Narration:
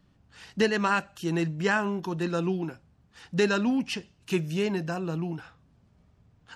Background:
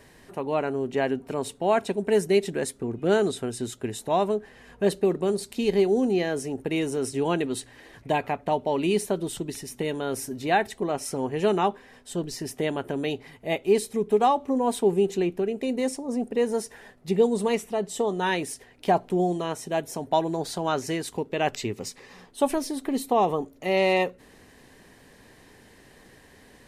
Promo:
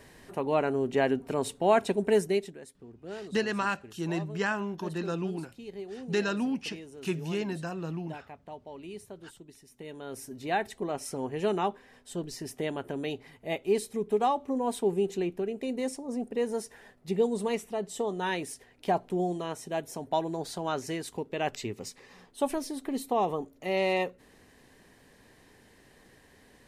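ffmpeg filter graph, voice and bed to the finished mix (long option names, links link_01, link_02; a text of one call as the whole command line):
ffmpeg -i stem1.wav -i stem2.wav -filter_complex "[0:a]adelay=2750,volume=-4.5dB[link_01];[1:a]volume=13dB,afade=type=out:start_time=2.04:duration=0.54:silence=0.11885,afade=type=in:start_time=9.69:duration=1.02:silence=0.211349[link_02];[link_01][link_02]amix=inputs=2:normalize=0" out.wav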